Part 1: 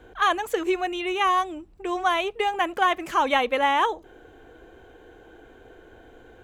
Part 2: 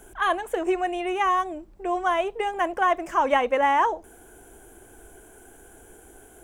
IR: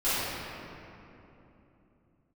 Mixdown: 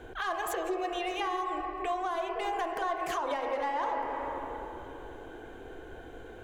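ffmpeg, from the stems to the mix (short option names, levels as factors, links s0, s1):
-filter_complex "[0:a]alimiter=limit=0.15:level=0:latency=1:release=103,volume=1.26[s0];[1:a]adynamicsmooth=sensitivity=2:basefreq=2600,volume=-1,volume=0.668,asplit=3[s1][s2][s3];[s2]volume=0.126[s4];[s3]apad=whole_len=283764[s5];[s0][s5]sidechaincompress=threshold=0.02:ratio=8:attack=31:release=168[s6];[2:a]atrim=start_sample=2205[s7];[s4][s7]afir=irnorm=-1:irlink=0[s8];[s6][s1][s8]amix=inputs=3:normalize=0,alimiter=limit=0.0708:level=0:latency=1:release=246"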